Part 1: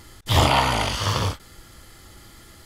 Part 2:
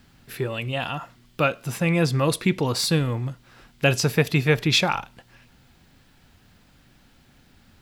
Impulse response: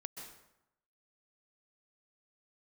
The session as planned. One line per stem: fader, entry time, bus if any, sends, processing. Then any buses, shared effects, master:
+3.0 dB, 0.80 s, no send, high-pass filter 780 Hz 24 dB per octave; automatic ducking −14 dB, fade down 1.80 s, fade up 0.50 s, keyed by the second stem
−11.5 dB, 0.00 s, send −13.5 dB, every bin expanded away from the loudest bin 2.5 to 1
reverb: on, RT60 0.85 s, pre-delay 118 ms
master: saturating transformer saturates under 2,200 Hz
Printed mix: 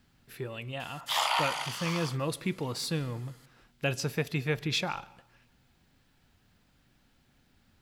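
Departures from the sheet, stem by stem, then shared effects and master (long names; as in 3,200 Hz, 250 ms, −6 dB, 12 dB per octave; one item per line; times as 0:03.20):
stem 2: missing every bin expanded away from the loudest bin 2.5 to 1
master: missing saturating transformer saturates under 2,200 Hz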